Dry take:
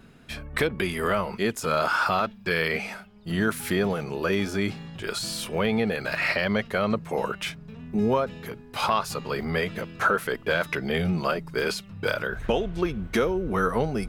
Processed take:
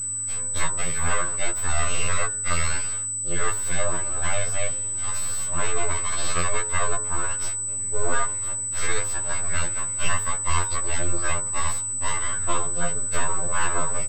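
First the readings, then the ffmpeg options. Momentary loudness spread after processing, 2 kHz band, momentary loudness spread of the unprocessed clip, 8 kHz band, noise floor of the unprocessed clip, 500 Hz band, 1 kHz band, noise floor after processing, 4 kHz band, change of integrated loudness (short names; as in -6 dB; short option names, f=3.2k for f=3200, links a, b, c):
2 LU, -2.5 dB, 8 LU, +20.5 dB, -48 dBFS, -7.5 dB, -1.0 dB, -29 dBFS, -2.0 dB, +2.0 dB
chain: -af "aeval=exprs='abs(val(0))':c=same,equalizer=f=1.3k:w=3.3:g=10.5,aeval=exprs='val(0)+0.0158*(sin(2*PI*50*n/s)+sin(2*PI*2*50*n/s)/2+sin(2*PI*3*50*n/s)/3+sin(2*PI*4*50*n/s)/4+sin(2*PI*5*50*n/s)/5)':c=same,bandreject=f=47.38:t=h:w=4,bandreject=f=94.76:t=h:w=4,bandreject=f=142.14:t=h:w=4,bandreject=f=189.52:t=h:w=4,bandreject=f=236.9:t=h:w=4,bandreject=f=284.28:t=h:w=4,bandreject=f=331.66:t=h:w=4,bandreject=f=379.04:t=h:w=4,bandreject=f=426.42:t=h:w=4,bandreject=f=473.8:t=h:w=4,bandreject=f=521.18:t=h:w=4,bandreject=f=568.56:t=h:w=4,bandreject=f=615.94:t=h:w=4,bandreject=f=663.32:t=h:w=4,bandreject=f=710.7:t=h:w=4,bandreject=f=758.08:t=h:w=4,bandreject=f=805.46:t=h:w=4,bandreject=f=852.84:t=h:w=4,bandreject=f=900.22:t=h:w=4,bandreject=f=947.6:t=h:w=4,bandreject=f=994.98:t=h:w=4,bandreject=f=1.04236k:t=h:w=4,bandreject=f=1.08974k:t=h:w=4,bandreject=f=1.13712k:t=h:w=4,bandreject=f=1.1845k:t=h:w=4,bandreject=f=1.23188k:t=h:w=4,bandreject=f=1.27926k:t=h:w=4,bandreject=f=1.32664k:t=h:w=4,bandreject=f=1.37402k:t=h:w=4,bandreject=f=1.4214k:t=h:w=4,bandreject=f=1.46878k:t=h:w=4,bandreject=f=1.51616k:t=h:w=4,bandreject=f=1.56354k:t=h:w=4,bandreject=f=1.61092k:t=h:w=4,bandreject=f=1.6583k:t=h:w=4,bandreject=f=1.70568k:t=h:w=4,bandreject=f=1.75306k:t=h:w=4,bandreject=f=1.80044k:t=h:w=4,bandreject=f=1.84782k:t=h:w=4,aeval=exprs='val(0)+0.0447*sin(2*PI*8000*n/s)':c=same,highshelf=f=9.6k:g=-7.5,aecho=1:1:1.9:0.5,afftfilt=real='re*2*eq(mod(b,4),0)':imag='im*2*eq(mod(b,4),0)':win_size=2048:overlap=0.75"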